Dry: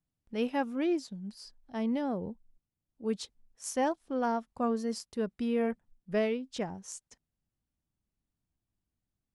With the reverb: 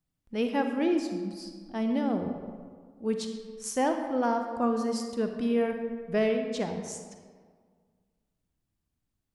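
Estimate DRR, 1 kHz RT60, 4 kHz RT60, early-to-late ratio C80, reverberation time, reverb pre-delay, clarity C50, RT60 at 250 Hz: 5.0 dB, 1.7 s, 1.0 s, 7.0 dB, 1.7 s, 36 ms, 6.0 dB, 1.8 s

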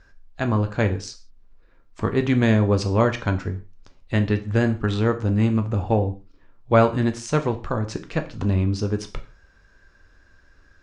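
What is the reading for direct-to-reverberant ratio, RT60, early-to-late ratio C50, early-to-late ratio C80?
6.5 dB, no single decay rate, 15.0 dB, 19.0 dB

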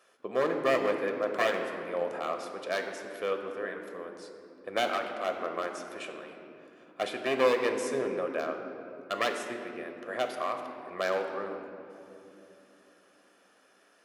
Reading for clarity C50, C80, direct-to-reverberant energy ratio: 6.0 dB, 7.0 dB, 4.5 dB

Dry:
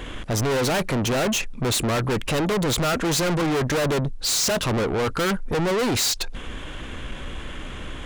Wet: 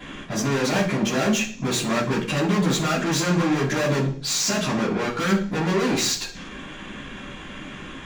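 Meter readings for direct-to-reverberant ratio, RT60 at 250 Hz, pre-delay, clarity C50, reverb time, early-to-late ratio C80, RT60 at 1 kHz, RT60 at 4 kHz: -12.5 dB, 0.60 s, 3 ms, 8.5 dB, 0.45 s, 13.0 dB, 0.45 s, 0.65 s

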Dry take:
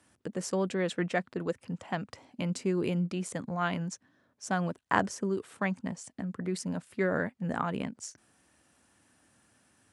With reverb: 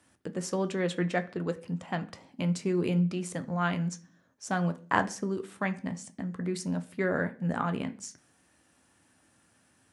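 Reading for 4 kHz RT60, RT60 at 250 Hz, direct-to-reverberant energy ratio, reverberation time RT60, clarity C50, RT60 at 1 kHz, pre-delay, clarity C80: 0.50 s, 0.55 s, 8.5 dB, 0.40 s, 17.5 dB, 0.40 s, 11 ms, 22.0 dB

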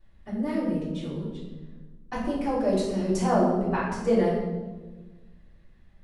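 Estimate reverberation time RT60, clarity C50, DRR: 1.3 s, 1.5 dB, -9.0 dB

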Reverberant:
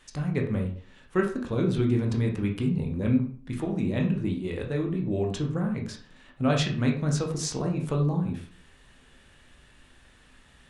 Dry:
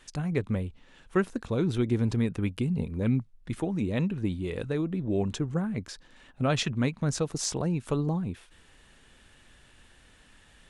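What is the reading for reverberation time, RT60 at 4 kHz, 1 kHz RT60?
0.45 s, 0.35 s, 0.45 s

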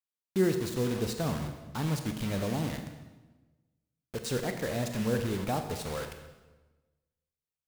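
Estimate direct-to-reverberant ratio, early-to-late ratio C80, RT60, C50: 6.0 dB, 9.0 dB, 1.2 s, 7.5 dB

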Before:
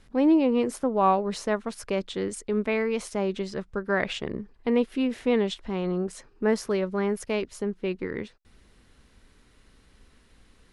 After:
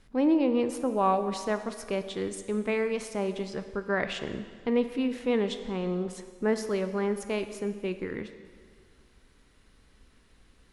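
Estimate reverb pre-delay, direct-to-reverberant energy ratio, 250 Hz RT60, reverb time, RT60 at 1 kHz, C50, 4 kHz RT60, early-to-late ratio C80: 7 ms, 9.5 dB, 1.9 s, 1.8 s, 1.8 s, 10.5 dB, 1.7 s, 11.5 dB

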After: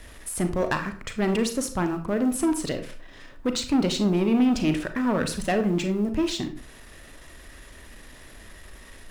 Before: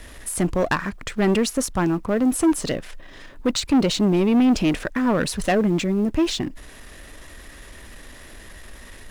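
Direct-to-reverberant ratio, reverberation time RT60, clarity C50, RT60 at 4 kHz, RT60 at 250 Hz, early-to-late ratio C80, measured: 7.0 dB, 0.45 s, 11.0 dB, 0.30 s, 0.50 s, 15.0 dB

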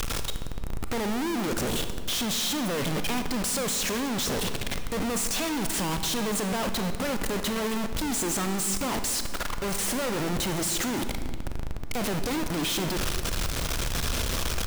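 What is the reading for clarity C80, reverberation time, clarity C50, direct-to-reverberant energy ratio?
10.0 dB, 1.7 s, 9.0 dB, 7.5 dB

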